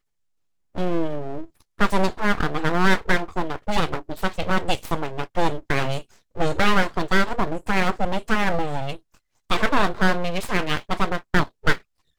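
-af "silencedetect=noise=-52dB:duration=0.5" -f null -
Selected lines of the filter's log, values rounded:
silence_start: 0.00
silence_end: 0.75 | silence_duration: 0.75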